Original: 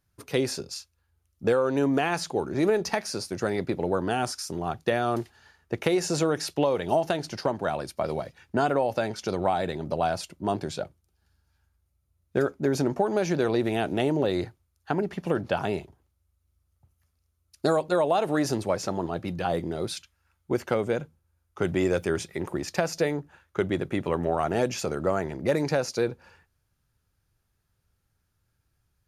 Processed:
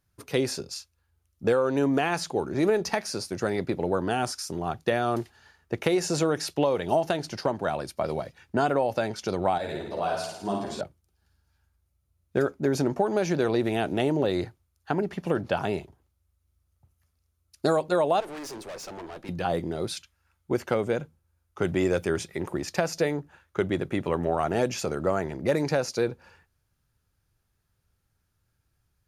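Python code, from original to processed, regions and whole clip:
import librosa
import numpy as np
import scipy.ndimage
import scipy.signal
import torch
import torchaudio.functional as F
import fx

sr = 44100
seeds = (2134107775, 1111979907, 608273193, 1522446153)

y = fx.chain(x, sr, fx.low_shelf(hz=160.0, db=-6.0),
    fx.room_flutter(wall_m=9.2, rt60_s=0.89),
    fx.ensemble(), at=(9.58, 10.81))
y = fx.chain(y, sr, fx.highpass(hz=300.0, slope=12),
    fx.tube_stage(drive_db=36.0, bias=0.5), at=(18.2, 19.29))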